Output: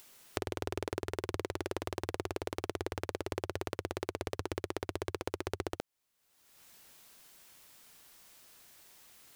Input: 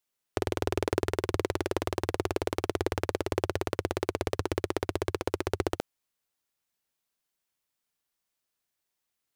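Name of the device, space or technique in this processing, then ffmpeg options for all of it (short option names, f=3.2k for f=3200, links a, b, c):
upward and downward compression: -af "acompressor=mode=upward:threshold=-41dB:ratio=2.5,acompressor=threshold=-34dB:ratio=6,volume=2dB"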